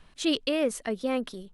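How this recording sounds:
background noise floor −58 dBFS
spectral slope −3.0 dB per octave

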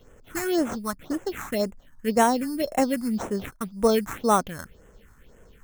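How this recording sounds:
aliases and images of a low sample rate 4,800 Hz, jitter 0%
phaser sweep stages 4, 1.9 Hz, lowest notch 480–4,300 Hz

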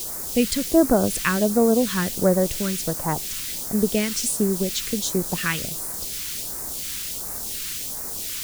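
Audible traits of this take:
a quantiser's noise floor 6 bits, dither triangular
phaser sweep stages 2, 1.4 Hz, lowest notch 660–2,900 Hz

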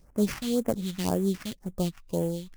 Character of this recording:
aliases and images of a low sample rate 3,800 Hz, jitter 20%
phaser sweep stages 2, 1.9 Hz, lowest notch 420–3,900 Hz

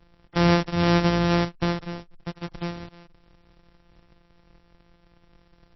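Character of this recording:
a buzz of ramps at a fixed pitch in blocks of 256 samples
MP3

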